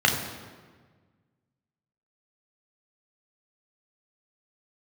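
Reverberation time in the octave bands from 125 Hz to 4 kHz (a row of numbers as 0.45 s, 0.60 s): 2.1 s, 1.8 s, 1.6 s, 1.4 s, 1.3 s, 1.1 s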